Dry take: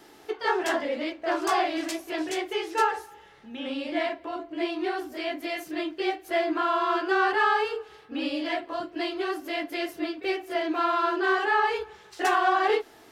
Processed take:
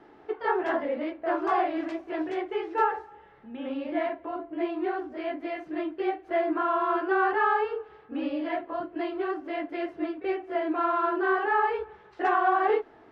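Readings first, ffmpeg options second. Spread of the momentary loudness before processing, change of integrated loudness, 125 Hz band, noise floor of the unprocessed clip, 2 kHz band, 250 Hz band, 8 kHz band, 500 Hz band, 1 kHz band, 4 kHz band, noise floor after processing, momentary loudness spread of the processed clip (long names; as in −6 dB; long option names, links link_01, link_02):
10 LU, −1.0 dB, can't be measured, −53 dBFS, −3.5 dB, 0.0 dB, below −25 dB, 0.0 dB, −0.5 dB, −13.0 dB, −54 dBFS, 10 LU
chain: -af "lowpass=1600"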